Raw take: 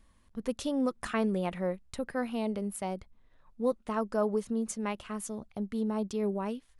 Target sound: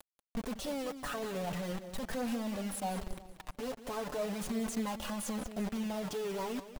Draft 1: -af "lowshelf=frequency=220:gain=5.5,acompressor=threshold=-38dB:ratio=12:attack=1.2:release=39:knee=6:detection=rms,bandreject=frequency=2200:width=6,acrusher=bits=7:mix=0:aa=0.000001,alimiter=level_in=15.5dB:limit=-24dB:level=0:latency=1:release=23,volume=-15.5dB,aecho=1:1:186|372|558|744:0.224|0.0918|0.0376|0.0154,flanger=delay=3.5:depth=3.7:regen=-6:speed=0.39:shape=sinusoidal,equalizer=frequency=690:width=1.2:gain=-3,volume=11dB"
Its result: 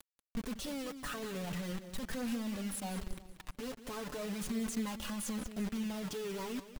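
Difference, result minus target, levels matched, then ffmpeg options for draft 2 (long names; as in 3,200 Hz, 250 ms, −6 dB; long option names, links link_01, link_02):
500 Hz band −3.0 dB
-af "lowshelf=frequency=220:gain=5.5,acompressor=threshold=-38dB:ratio=12:attack=1.2:release=39:knee=6:detection=rms,bandreject=frequency=2200:width=6,acrusher=bits=7:mix=0:aa=0.000001,alimiter=level_in=15.5dB:limit=-24dB:level=0:latency=1:release=23,volume=-15.5dB,aecho=1:1:186|372|558|744:0.224|0.0918|0.0376|0.0154,flanger=delay=3.5:depth=3.7:regen=-6:speed=0.39:shape=sinusoidal,equalizer=frequency=690:width=1.2:gain=5.5,volume=11dB"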